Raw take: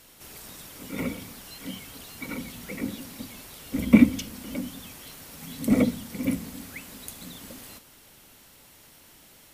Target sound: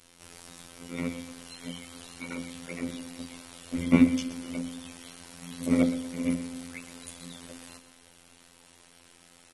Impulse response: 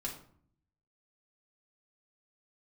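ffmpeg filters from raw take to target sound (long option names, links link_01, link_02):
-af "afftfilt=real='hypot(re,im)*cos(PI*b)':imag='0':win_size=2048:overlap=0.75,aecho=1:1:120|240|360|480:0.2|0.0878|0.0386|0.017" -ar 24000 -c:a aac -b:a 32k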